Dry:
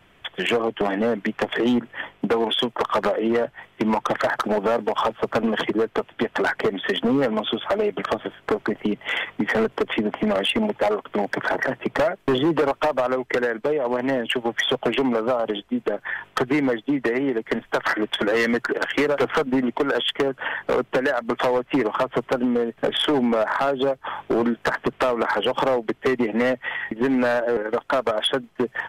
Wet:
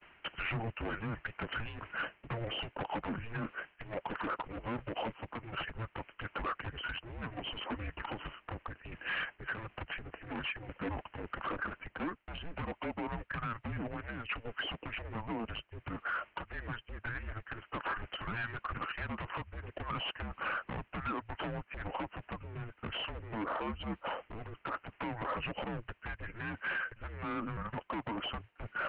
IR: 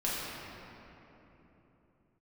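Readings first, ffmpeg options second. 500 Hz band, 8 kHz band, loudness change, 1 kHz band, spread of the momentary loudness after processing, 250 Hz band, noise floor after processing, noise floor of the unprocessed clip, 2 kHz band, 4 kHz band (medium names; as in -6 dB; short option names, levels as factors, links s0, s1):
-23.5 dB, under -35 dB, -17.0 dB, -14.0 dB, 6 LU, -19.5 dB, -68 dBFS, -56 dBFS, -12.5 dB, -15.5 dB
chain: -af "agate=range=0.0224:threshold=0.00355:ratio=3:detection=peak,asubboost=boost=11.5:cutoff=130,areverse,acompressor=threshold=0.0158:ratio=6,areverse,crystalizer=i=5:c=0,aresample=11025,asoftclip=type=hard:threshold=0.0211,aresample=44100,highpass=f=350:t=q:w=0.5412,highpass=f=350:t=q:w=1.307,lowpass=f=3100:t=q:w=0.5176,lowpass=f=3100:t=q:w=0.7071,lowpass=f=3100:t=q:w=1.932,afreqshift=-340,volume=1.26"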